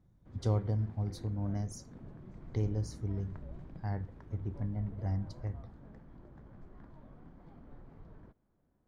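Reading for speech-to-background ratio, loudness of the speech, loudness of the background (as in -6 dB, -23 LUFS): 16.0 dB, -37.0 LUFS, -53.0 LUFS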